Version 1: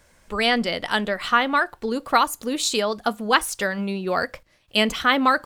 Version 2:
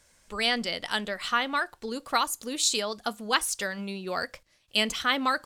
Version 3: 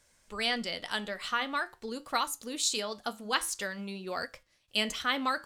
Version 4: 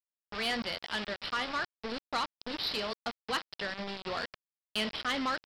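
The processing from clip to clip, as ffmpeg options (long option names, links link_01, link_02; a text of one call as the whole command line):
ffmpeg -i in.wav -af "equalizer=frequency=7000:width=0.42:gain=9.5,volume=-9dB" out.wav
ffmpeg -i in.wav -af "flanger=delay=8.1:depth=3.4:regen=-79:speed=0.47:shape=triangular" out.wav
ffmpeg -i in.wav -af "aresample=11025,acrusher=bits=5:mix=0:aa=0.000001,aresample=44100,asoftclip=type=tanh:threshold=-24.5dB" out.wav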